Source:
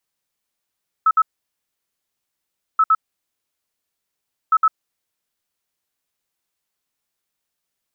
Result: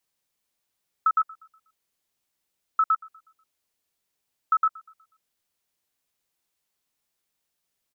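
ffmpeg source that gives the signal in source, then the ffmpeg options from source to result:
-f lavfi -i "aevalsrc='0.299*sin(2*PI*1300*t)*clip(min(mod(mod(t,1.73),0.11),0.05-mod(mod(t,1.73),0.11))/0.005,0,1)*lt(mod(t,1.73),0.22)':d=5.19:s=44100"
-filter_complex "[0:a]equalizer=f=1.4k:w=1.5:g=-2,acompressor=threshold=-19dB:ratio=6,asplit=2[a][b];[b]adelay=122,lowpass=f=2k:p=1,volume=-20dB,asplit=2[c][d];[d]adelay=122,lowpass=f=2k:p=1,volume=0.48,asplit=2[e][f];[f]adelay=122,lowpass=f=2k:p=1,volume=0.48,asplit=2[g][h];[h]adelay=122,lowpass=f=2k:p=1,volume=0.48[i];[a][c][e][g][i]amix=inputs=5:normalize=0"

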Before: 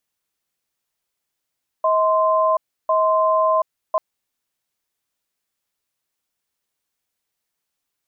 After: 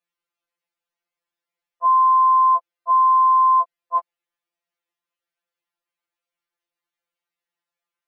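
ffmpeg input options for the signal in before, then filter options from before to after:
-f lavfi -i "aevalsrc='0.141*(sin(2*PI*637*t)+sin(2*PI*1040*t))*clip(min(mod(t,1.05),0.73-mod(t,1.05))/0.005,0,1)':d=2.14:s=44100"
-af "bass=f=250:g=-12,treble=f=4k:g=-13,afftfilt=real='re*2.83*eq(mod(b,8),0)':imag='im*2.83*eq(mod(b,8),0)':win_size=2048:overlap=0.75"

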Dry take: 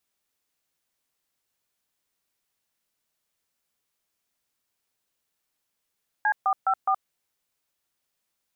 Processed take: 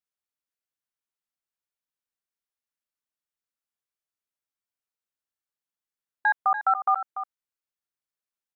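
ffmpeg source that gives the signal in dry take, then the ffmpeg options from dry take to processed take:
-f lavfi -i "aevalsrc='0.0794*clip(min(mod(t,0.208),0.072-mod(t,0.208))/0.002,0,1)*(eq(floor(t/0.208),0)*(sin(2*PI*852*mod(t,0.208))+sin(2*PI*1633*mod(t,0.208)))+eq(floor(t/0.208),1)*(sin(2*PI*770*mod(t,0.208))+sin(2*PI*1209*mod(t,0.208)))+eq(floor(t/0.208),2)*(sin(2*PI*770*mod(t,0.208))+sin(2*PI*1336*mod(t,0.208)))+eq(floor(t/0.208),3)*(sin(2*PI*770*mod(t,0.208))+sin(2*PI*1209*mod(t,0.208))))':d=0.832:s=44100"
-filter_complex "[0:a]afwtdn=0.00501,equalizer=f=1.4k:w=1.5:g=4,asplit=2[a][b];[b]aecho=0:1:290:0.299[c];[a][c]amix=inputs=2:normalize=0"

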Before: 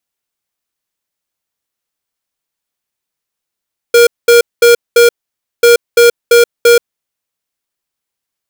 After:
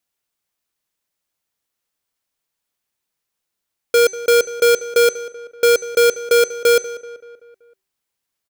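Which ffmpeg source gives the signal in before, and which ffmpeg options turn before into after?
-f lavfi -i "aevalsrc='0.562*(2*lt(mod(473*t,1),0.5)-1)*clip(min(mod(mod(t,1.69),0.34),0.13-mod(mod(t,1.69),0.34))/0.005,0,1)*lt(mod(t,1.69),1.36)':d=3.38:s=44100"
-filter_complex "[0:a]bandreject=f=384.2:t=h:w=4,bandreject=f=768.4:t=h:w=4,bandreject=f=1.1526k:t=h:w=4,bandreject=f=1.5368k:t=h:w=4,bandreject=f=1.921k:t=h:w=4,bandreject=f=2.3052k:t=h:w=4,bandreject=f=2.6894k:t=h:w=4,bandreject=f=3.0736k:t=h:w=4,bandreject=f=3.4578k:t=h:w=4,bandreject=f=3.842k:t=h:w=4,bandreject=f=4.2262k:t=h:w=4,bandreject=f=4.6104k:t=h:w=4,bandreject=f=4.9946k:t=h:w=4,bandreject=f=5.3788k:t=h:w=4,bandreject=f=5.763k:t=h:w=4,bandreject=f=6.1472k:t=h:w=4,bandreject=f=6.5314k:t=h:w=4,bandreject=f=6.9156k:t=h:w=4,bandreject=f=7.2998k:t=h:w=4,bandreject=f=7.684k:t=h:w=4,bandreject=f=8.0682k:t=h:w=4,bandreject=f=8.4524k:t=h:w=4,bandreject=f=8.8366k:t=h:w=4,bandreject=f=9.2208k:t=h:w=4,bandreject=f=9.605k:t=h:w=4,bandreject=f=9.9892k:t=h:w=4,bandreject=f=10.3734k:t=h:w=4,bandreject=f=10.7576k:t=h:w=4,asoftclip=type=tanh:threshold=-11dB,asplit=2[a][b];[b]adelay=191,lowpass=f=3.1k:p=1,volume=-16dB,asplit=2[c][d];[d]adelay=191,lowpass=f=3.1k:p=1,volume=0.54,asplit=2[e][f];[f]adelay=191,lowpass=f=3.1k:p=1,volume=0.54,asplit=2[g][h];[h]adelay=191,lowpass=f=3.1k:p=1,volume=0.54,asplit=2[i][j];[j]adelay=191,lowpass=f=3.1k:p=1,volume=0.54[k];[a][c][e][g][i][k]amix=inputs=6:normalize=0"

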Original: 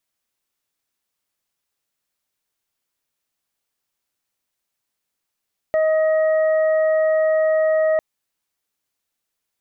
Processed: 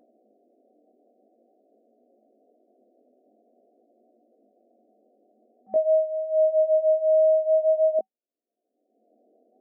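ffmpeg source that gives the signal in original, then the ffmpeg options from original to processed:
-f lavfi -i "aevalsrc='0.188*sin(2*PI*630*t)+0.0211*sin(2*PI*1260*t)+0.0335*sin(2*PI*1890*t)':d=2.25:s=44100"
-af "afftfilt=real='re*between(b*sr/4096,210,760)':imag='im*between(b*sr/4096,210,760)':win_size=4096:overlap=0.75,acompressor=mode=upward:threshold=-33dB:ratio=2.5,flanger=delay=16.5:depth=7.3:speed=0.48"

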